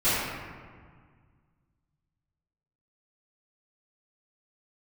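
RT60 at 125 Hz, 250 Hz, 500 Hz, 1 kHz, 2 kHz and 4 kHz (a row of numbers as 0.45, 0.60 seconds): 2.6, 2.2, 1.7, 1.8, 1.5, 1.0 seconds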